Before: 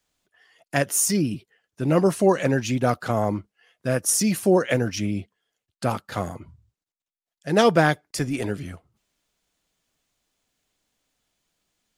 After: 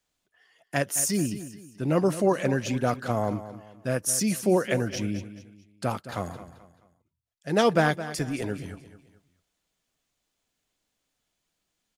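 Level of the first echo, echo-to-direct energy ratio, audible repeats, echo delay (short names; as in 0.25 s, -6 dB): -13.5 dB, -13.0 dB, 3, 0.217 s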